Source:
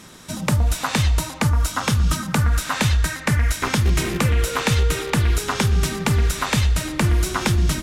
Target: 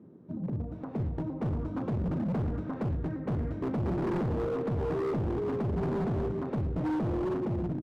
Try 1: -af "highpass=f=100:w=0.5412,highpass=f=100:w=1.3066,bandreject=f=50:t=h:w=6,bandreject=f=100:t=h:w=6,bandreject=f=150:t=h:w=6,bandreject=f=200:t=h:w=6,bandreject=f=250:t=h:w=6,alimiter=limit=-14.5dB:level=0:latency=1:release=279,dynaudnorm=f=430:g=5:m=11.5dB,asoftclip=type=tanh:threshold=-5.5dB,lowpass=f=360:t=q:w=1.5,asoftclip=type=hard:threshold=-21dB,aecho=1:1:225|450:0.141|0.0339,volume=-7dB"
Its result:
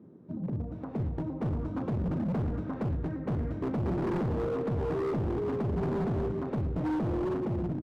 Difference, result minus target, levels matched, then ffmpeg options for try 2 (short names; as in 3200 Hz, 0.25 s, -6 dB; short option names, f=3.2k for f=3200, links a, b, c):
echo-to-direct +7.5 dB
-af "highpass=f=100:w=0.5412,highpass=f=100:w=1.3066,bandreject=f=50:t=h:w=6,bandreject=f=100:t=h:w=6,bandreject=f=150:t=h:w=6,bandreject=f=200:t=h:w=6,bandreject=f=250:t=h:w=6,alimiter=limit=-14.5dB:level=0:latency=1:release=279,dynaudnorm=f=430:g=5:m=11.5dB,asoftclip=type=tanh:threshold=-5.5dB,lowpass=f=360:t=q:w=1.5,asoftclip=type=hard:threshold=-21dB,aecho=1:1:225|450:0.0596|0.0143,volume=-7dB"